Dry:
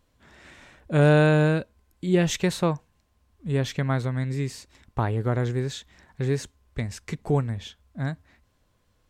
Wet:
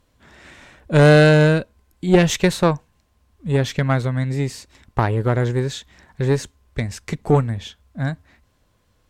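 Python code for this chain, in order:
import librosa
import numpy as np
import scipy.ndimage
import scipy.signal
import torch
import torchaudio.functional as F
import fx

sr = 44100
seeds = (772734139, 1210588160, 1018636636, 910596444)

y = fx.cheby_harmonics(x, sr, harmonics=(2, 5, 7), levels_db=(-9, -27, -24), full_scale_db=-8.5)
y = y * librosa.db_to_amplitude(7.0)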